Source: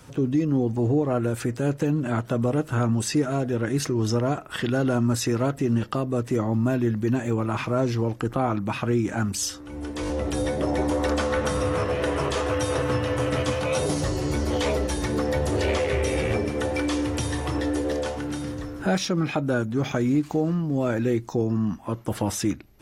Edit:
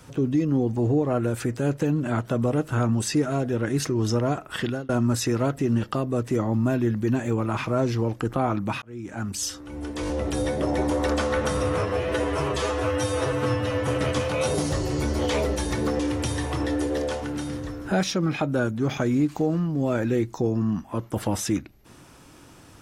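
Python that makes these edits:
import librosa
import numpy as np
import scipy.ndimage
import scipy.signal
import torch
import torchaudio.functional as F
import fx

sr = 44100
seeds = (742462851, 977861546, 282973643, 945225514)

y = fx.edit(x, sr, fx.fade_out_span(start_s=4.63, length_s=0.26),
    fx.fade_in_span(start_s=8.82, length_s=0.72),
    fx.stretch_span(start_s=11.82, length_s=1.37, factor=1.5),
    fx.cut(start_s=15.31, length_s=1.63), tone=tone)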